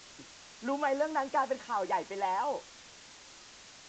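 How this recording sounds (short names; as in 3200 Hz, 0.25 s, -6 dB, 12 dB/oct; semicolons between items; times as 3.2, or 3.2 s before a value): a quantiser's noise floor 8-bit, dither triangular; AAC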